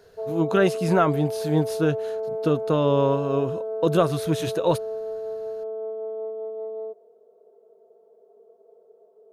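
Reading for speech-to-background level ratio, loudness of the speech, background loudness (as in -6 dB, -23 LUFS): 6.5 dB, -24.0 LUFS, -30.5 LUFS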